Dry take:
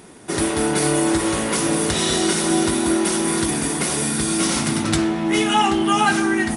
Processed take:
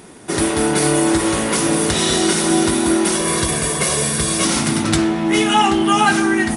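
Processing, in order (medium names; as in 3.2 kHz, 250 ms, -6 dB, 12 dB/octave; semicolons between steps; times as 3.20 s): 3.15–4.45 s: comb 1.8 ms, depth 72%; trim +3 dB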